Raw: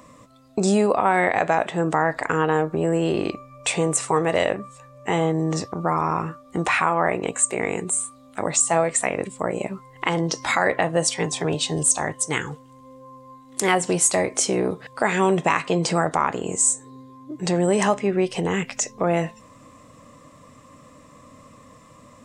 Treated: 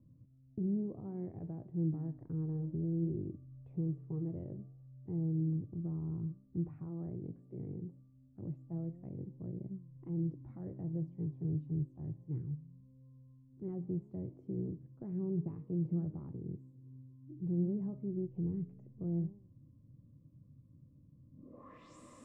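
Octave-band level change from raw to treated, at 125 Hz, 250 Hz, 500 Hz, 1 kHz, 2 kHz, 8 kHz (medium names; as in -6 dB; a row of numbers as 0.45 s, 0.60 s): -7.5 dB, -12.0 dB, -24.0 dB, under -40 dB, under -40 dB, under -40 dB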